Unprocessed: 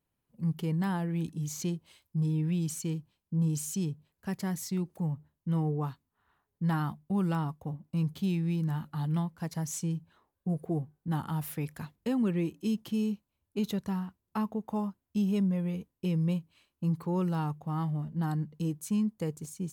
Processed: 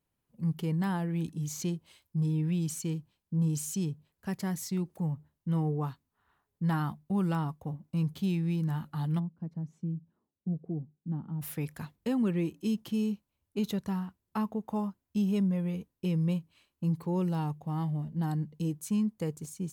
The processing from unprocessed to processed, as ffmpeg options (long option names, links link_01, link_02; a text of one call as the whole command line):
ffmpeg -i in.wav -filter_complex "[0:a]asplit=3[link_01][link_02][link_03];[link_01]afade=type=out:start_time=9.18:duration=0.02[link_04];[link_02]bandpass=frequency=210:width_type=q:width=1.6,afade=type=in:start_time=9.18:duration=0.02,afade=type=out:start_time=11.41:duration=0.02[link_05];[link_03]afade=type=in:start_time=11.41:duration=0.02[link_06];[link_04][link_05][link_06]amix=inputs=3:normalize=0,asettb=1/sr,asplit=3[link_07][link_08][link_09];[link_07]atrim=end=16.844[link_10];[link_08]atrim=start=16.84:end=18.73,asetpts=PTS-STARTPTS,afade=type=in:duration=0.004:curve=qsin,afade=type=out:start_time=1.886:duration=0.004:curve=qsin,equalizer=frequency=1300:width_type=o:width=0.52:gain=-7[link_11];[link_09]atrim=start=18.726[link_12];[link_10][link_11]acrossfade=duration=0.004:curve1=hsin:curve2=qsin[link_13];[link_13][link_12]acrossfade=duration=0.004:curve1=qsin:curve2=hsin" out.wav